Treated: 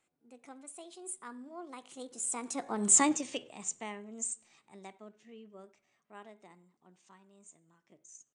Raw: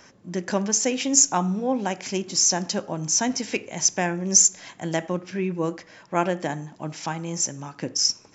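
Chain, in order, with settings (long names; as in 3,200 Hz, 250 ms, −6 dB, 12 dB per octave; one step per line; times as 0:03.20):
source passing by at 0:02.94, 22 m/s, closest 2.7 metres
pitch shifter +4 semitones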